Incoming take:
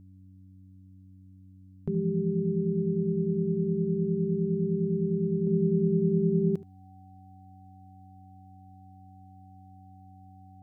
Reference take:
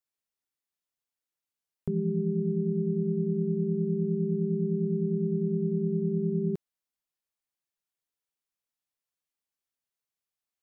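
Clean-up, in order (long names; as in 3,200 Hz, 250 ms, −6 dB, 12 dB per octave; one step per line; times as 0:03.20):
hum removal 94.2 Hz, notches 3
notch filter 760 Hz, Q 30
echo removal 74 ms −18.5 dB
level correction −3 dB, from 0:05.47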